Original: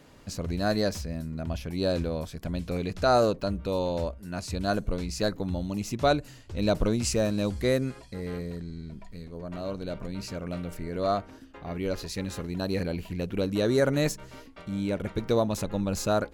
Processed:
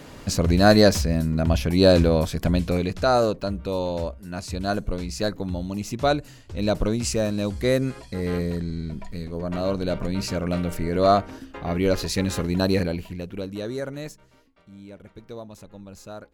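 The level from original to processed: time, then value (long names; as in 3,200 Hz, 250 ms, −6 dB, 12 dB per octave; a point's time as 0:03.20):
0:02.47 +11.5 dB
0:03.12 +2 dB
0:07.50 +2 dB
0:08.36 +9 dB
0:12.67 +9 dB
0:13.23 −2 dB
0:14.51 −13.5 dB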